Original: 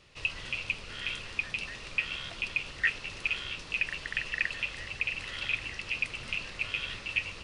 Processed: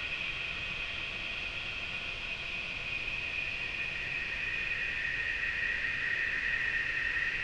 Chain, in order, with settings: air absorption 76 m; Paulstretch 8.8×, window 1.00 s, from 2.09

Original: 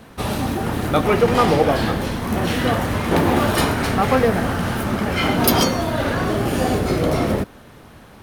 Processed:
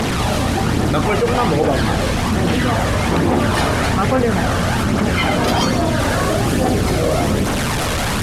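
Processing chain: delta modulation 64 kbps, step -22 dBFS; high shelf 8700 Hz -9 dB, from 5.99 s -2 dB; phaser 1.2 Hz, delay 1.9 ms, feedback 37%; fast leveller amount 70%; gain -4.5 dB

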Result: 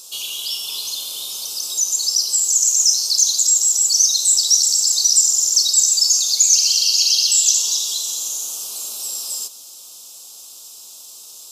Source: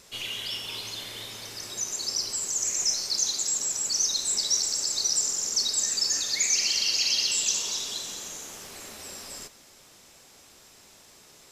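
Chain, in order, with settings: bell 1900 Hz +4.5 dB 0.31 oct; in parallel at -1 dB: compressor, threshold -38 dBFS, peak gain reduction 16.5 dB; on the sum: Butterworth band-stop 1900 Hz, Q 1; tilt +4.5 dB/oct; gain -2 dB

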